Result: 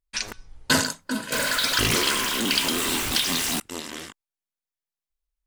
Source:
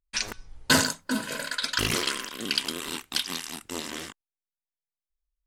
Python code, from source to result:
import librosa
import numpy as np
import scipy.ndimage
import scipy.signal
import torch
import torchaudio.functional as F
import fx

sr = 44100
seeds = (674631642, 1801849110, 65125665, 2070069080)

y = fx.zero_step(x, sr, step_db=-21.5, at=(1.32, 3.6))